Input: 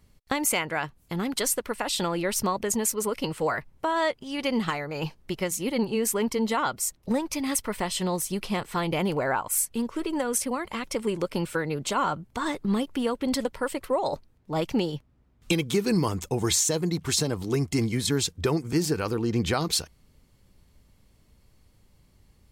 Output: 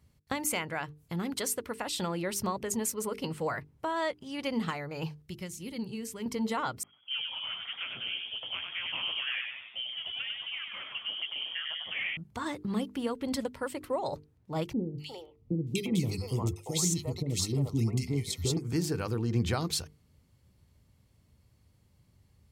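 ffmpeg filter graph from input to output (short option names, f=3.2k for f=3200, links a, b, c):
-filter_complex "[0:a]asettb=1/sr,asplit=3[a][b][c];[a]atrim=end=5.224[d];[b]atrim=start=5.22:end=6.26,asetpts=PTS-STARTPTS,afade=t=in:d=0.004:c=qsin,afade=t=out:st=1.036:d=0.004:c=qsin,acrossover=split=5800[e][f];[f]acompressor=threshold=-37dB:ratio=4:attack=1:release=60[g];[e][g]amix=inputs=2:normalize=0,equalizer=f=770:t=o:w=3:g=-12[h];[c]atrim=start=6.256[i];[d][h]acrossfade=d=0.004:c1=hsin:c2=qsin[j];[j][i]acrossfade=d=0.004:c1=qsin:c2=hsin,asettb=1/sr,asplit=3[k][l][m];[k]atrim=end=6.834[n];[l]atrim=start=6.83:end=12.17,asetpts=PTS-STARTPTS,afade=t=in:d=0.004:c=qsin,afade=t=out:st=5.336:d=0.004:c=qsin,lowpass=f=2.8k:t=q:w=0.5098,lowpass=f=2.8k:t=q:w=0.6013,lowpass=f=2.8k:t=q:w=0.9,lowpass=f=2.8k:t=q:w=2.563,afreqshift=-3300,flanger=delay=1.8:depth=9.7:regen=-32:speed=2:shape=triangular,asplit=8[o][p][q][r][s][t][u][v];[p]adelay=97,afreqshift=71,volume=-4dB[w];[q]adelay=194,afreqshift=142,volume=-9.5dB[x];[r]adelay=291,afreqshift=213,volume=-15dB[y];[s]adelay=388,afreqshift=284,volume=-20.5dB[z];[t]adelay=485,afreqshift=355,volume=-26.1dB[aa];[u]adelay=582,afreqshift=426,volume=-31.6dB[ab];[v]adelay=679,afreqshift=497,volume=-37.1dB[ac];[o][w][x][y][z][aa][ab][ac]amix=inputs=8:normalize=0,atrim=end_sample=235494[ad];[m]atrim=start=12.166[ae];[n][ad]acrossfade=d=0.004:c1=hsin:c2=qsin[af];[af][ae]acrossfade=d=0.004:c1=qsin:c2=hsin,asettb=1/sr,asplit=3[ag][ah][ai];[ag]atrim=end=14.734[aj];[ah]atrim=start=14.73:end=18.57,asetpts=PTS-STARTPTS,afade=t=in:d=0.004:c=qsin,afade=t=out:st=3.836:d=0.004:c=qsin,asuperstop=centerf=1600:order=12:qfactor=3.6,equalizer=f=1.2k:t=o:w=0.76:g=-5,acrossover=split=510|1900[ak][al][am];[am]adelay=250[an];[al]adelay=350[ao];[ak][ao][an]amix=inputs=3:normalize=0,atrim=end_sample=169344[ap];[ai]atrim=start=18.566[aq];[aj][ap]acrossfade=d=0.004:c1=hsin:c2=qsin[ar];[ar][aq]acrossfade=d=0.004:c1=qsin:c2=hsin,highpass=54,equalizer=f=100:w=0.91:g=8.5,bandreject=f=50:t=h:w=6,bandreject=f=100:t=h:w=6,bandreject=f=150:t=h:w=6,bandreject=f=200:t=h:w=6,bandreject=f=250:t=h:w=6,bandreject=f=300:t=h:w=6,bandreject=f=350:t=h:w=6,bandreject=f=400:t=h:w=6,bandreject=f=450:t=h:w=6,volume=-6.5dB"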